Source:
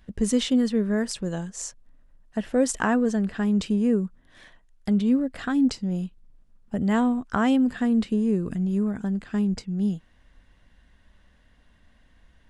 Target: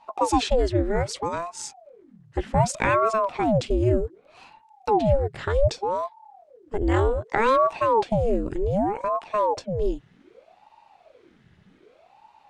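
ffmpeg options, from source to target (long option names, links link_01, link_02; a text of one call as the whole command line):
ffmpeg -i in.wav -af "lowpass=7600,aeval=exprs='val(0)*sin(2*PI*510*n/s+510*0.75/0.65*sin(2*PI*0.65*n/s))':channel_layout=same,volume=4dB" out.wav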